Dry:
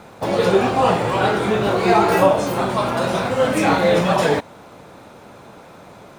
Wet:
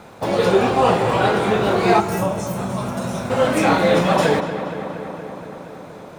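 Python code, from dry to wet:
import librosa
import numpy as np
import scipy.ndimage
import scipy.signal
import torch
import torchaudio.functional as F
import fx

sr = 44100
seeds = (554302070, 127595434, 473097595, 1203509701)

y = fx.echo_filtered(x, sr, ms=235, feedback_pct=77, hz=3900.0, wet_db=-11)
y = fx.spec_box(y, sr, start_s=2.0, length_s=1.3, low_hz=240.0, high_hz=5200.0, gain_db=-9)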